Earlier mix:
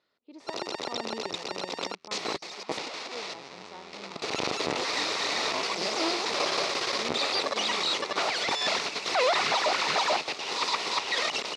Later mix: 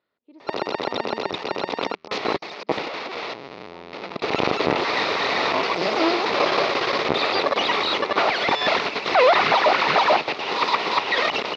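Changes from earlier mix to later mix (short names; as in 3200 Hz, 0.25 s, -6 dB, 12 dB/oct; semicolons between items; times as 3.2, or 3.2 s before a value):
first sound +10.5 dB; second sound: entry +1.40 s; master: add air absorption 270 m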